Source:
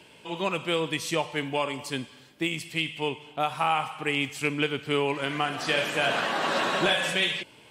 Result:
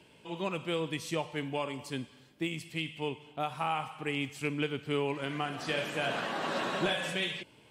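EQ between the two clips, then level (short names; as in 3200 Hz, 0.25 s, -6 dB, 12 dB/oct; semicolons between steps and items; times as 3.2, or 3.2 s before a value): low shelf 430 Hz +6.5 dB; -8.5 dB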